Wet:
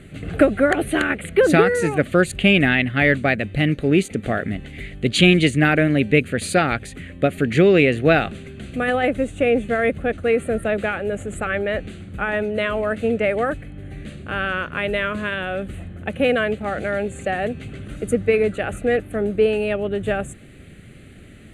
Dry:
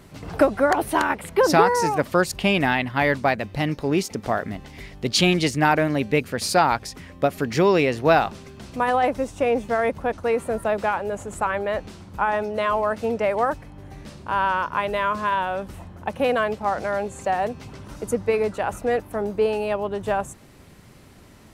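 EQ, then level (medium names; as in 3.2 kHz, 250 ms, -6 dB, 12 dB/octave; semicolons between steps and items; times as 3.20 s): low-pass 10 kHz 24 dB/octave; static phaser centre 2.3 kHz, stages 4; +6.5 dB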